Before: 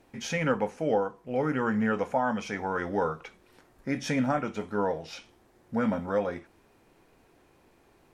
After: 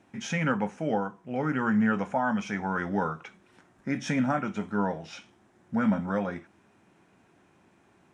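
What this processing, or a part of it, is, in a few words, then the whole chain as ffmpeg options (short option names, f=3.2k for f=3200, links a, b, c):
car door speaker: -af "highpass=93,equalizer=f=100:t=q:w=4:g=3,equalizer=f=190:t=q:w=4:g=8,equalizer=f=480:t=q:w=4:g=-7,equalizer=f=1.5k:t=q:w=4:g=3,equalizer=f=4.5k:t=q:w=4:g=-7,lowpass=f=9.2k:w=0.5412,lowpass=f=9.2k:w=1.3066"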